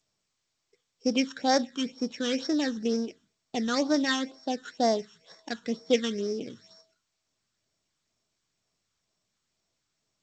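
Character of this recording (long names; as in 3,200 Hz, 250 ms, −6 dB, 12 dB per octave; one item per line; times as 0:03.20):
a buzz of ramps at a fixed pitch in blocks of 8 samples
phaser sweep stages 8, 2.1 Hz, lowest notch 640–2,900 Hz
G.722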